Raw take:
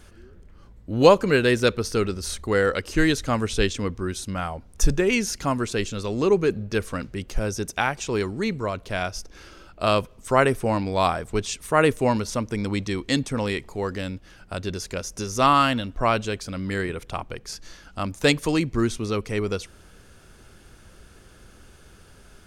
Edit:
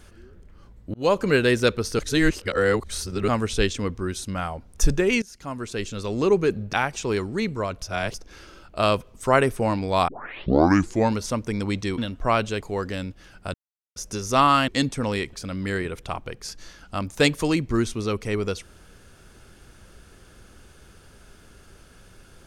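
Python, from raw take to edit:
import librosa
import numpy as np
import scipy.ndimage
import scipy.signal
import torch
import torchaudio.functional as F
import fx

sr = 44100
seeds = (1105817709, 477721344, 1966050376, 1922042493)

y = fx.edit(x, sr, fx.fade_in_span(start_s=0.94, length_s=0.32),
    fx.reverse_span(start_s=1.99, length_s=1.29),
    fx.fade_in_from(start_s=5.22, length_s=0.92, floor_db=-22.0),
    fx.cut(start_s=6.73, length_s=1.04),
    fx.reverse_span(start_s=8.86, length_s=0.32),
    fx.tape_start(start_s=11.12, length_s=1.05),
    fx.swap(start_s=13.02, length_s=0.65, other_s=15.74, other_length_s=0.63),
    fx.silence(start_s=14.6, length_s=0.42), tone=tone)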